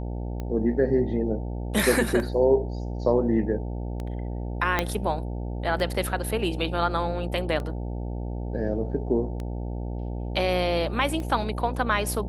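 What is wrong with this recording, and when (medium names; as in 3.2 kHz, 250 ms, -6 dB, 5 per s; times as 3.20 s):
buzz 60 Hz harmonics 15 -31 dBFS
tick 33 1/3 rpm -21 dBFS
4.79 s: pop -8 dBFS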